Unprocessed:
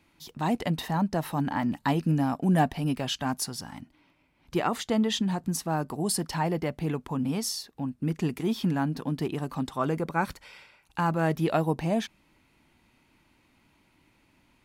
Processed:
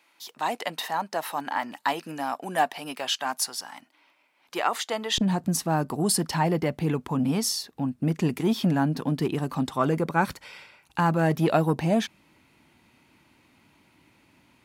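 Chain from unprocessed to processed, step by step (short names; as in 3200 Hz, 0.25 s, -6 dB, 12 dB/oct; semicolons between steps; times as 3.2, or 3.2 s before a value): HPF 630 Hz 12 dB/oct, from 5.18 s 81 Hz; core saturation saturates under 340 Hz; gain +4.5 dB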